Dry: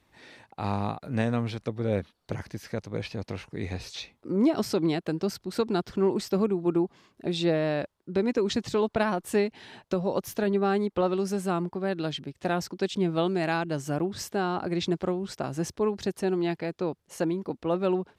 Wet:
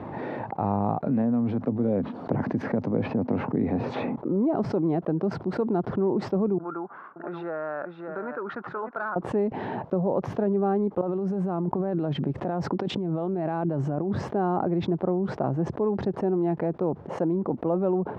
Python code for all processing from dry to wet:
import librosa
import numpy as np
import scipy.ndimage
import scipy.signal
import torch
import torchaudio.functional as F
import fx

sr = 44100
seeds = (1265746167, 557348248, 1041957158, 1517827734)

y = fx.chain(x, sr, fx.highpass(hz=100.0, slope=12),
    fx.peak_eq(hz=250.0, db=11.5, octaves=0.33),
    fx.band_squash(depth_pct=100), at=(1.06, 4.16))
y = fx.chain(y, sr, fx.bandpass_q(hz=1400.0, q=9.4),
    fx.clip_hard(threshold_db=-35.0),
    fx.echo_single(ms=579, db=-13.5), at=(6.58, 9.16))
y = fx.chain(y, sr, fx.high_shelf(hz=8800.0, db=10.5),
    fx.over_compress(threshold_db=-36.0, ratio=-1.0), at=(11.01, 14.21))
y = scipy.signal.sosfilt(scipy.signal.cheby1(2, 1.0, [130.0, 850.0], 'bandpass', fs=sr, output='sos'), y)
y = fx.env_flatten(y, sr, amount_pct=70)
y = y * librosa.db_to_amplitude(-2.0)